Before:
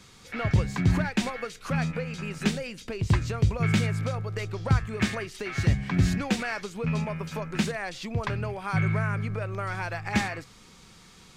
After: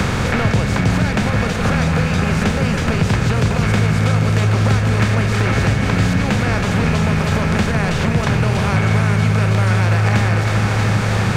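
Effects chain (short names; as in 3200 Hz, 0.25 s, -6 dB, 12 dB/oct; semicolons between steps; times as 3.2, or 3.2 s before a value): per-bin compression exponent 0.4; echo with dull and thin repeats by turns 0.16 s, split 880 Hz, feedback 90%, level -7 dB; three-band squash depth 100%; gain +2 dB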